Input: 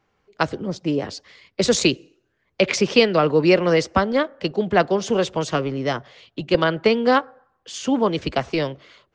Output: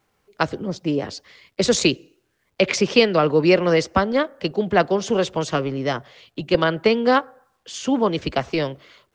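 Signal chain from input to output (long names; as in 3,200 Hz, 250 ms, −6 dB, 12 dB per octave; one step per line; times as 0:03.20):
bit reduction 12 bits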